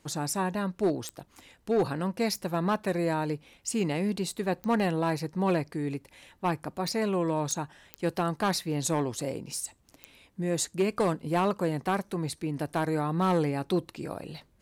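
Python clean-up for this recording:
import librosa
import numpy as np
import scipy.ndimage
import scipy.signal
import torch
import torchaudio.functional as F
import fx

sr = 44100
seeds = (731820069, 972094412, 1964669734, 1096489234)

y = fx.fix_declip(x, sr, threshold_db=-19.0)
y = fx.fix_declick_ar(y, sr, threshold=10.0)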